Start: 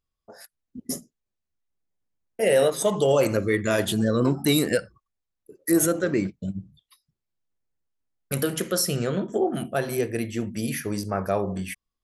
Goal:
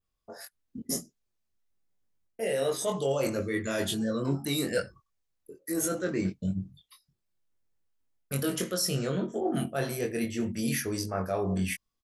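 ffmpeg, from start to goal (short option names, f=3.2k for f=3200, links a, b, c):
-filter_complex "[0:a]adynamicequalizer=threshold=0.00631:dfrequency=5500:dqfactor=1.2:tfrequency=5500:tqfactor=1.2:attack=5:release=100:ratio=0.375:range=2:mode=boostabove:tftype=bell,areverse,acompressor=threshold=-28dB:ratio=6,areverse,asplit=2[a][b];[b]adelay=22,volume=-3.5dB[c];[a][c]amix=inputs=2:normalize=0"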